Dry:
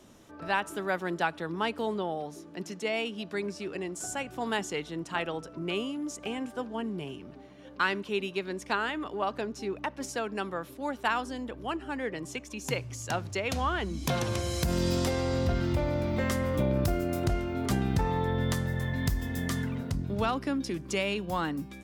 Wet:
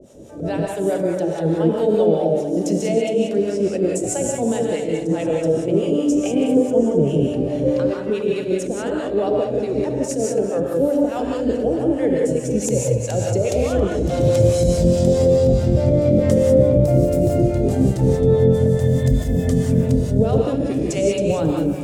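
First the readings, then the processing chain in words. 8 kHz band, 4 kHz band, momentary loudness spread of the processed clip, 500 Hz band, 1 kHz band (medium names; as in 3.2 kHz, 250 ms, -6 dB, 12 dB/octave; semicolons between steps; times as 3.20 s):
+10.5 dB, +1.0 dB, 6 LU, +16.5 dB, +2.0 dB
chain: recorder AGC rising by 16 dB/s; on a send: echo whose repeats swap between lows and highs 136 ms, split 1.4 kHz, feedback 73%, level -9 dB; on the sum: peak limiter -19.5 dBFS, peak gain reduction 10.5 dB; graphic EQ 125/1000/8000 Hz +4/+4/+10 dB; harmonic tremolo 4.7 Hz, depth 100%, crossover 610 Hz; resonant low shelf 770 Hz +11 dB, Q 3; gated-style reverb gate 210 ms rising, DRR -0.5 dB; attacks held to a fixed rise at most 140 dB/s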